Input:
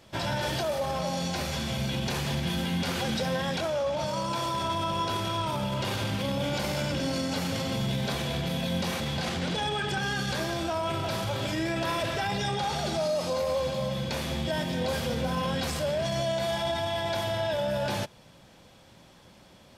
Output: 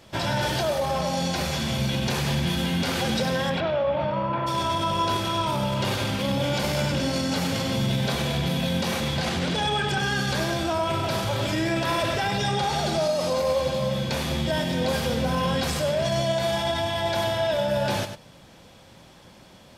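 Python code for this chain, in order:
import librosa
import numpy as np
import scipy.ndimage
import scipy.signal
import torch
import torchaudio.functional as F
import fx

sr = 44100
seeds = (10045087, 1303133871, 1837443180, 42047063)

y = fx.lowpass(x, sr, hz=fx.line((3.49, 3800.0), (4.46, 2200.0)), slope=24, at=(3.49, 4.46), fade=0.02)
y = y + 10.0 ** (-9.5 / 20.0) * np.pad(y, (int(99 * sr / 1000.0), 0))[:len(y)]
y = y * 10.0 ** (4.0 / 20.0)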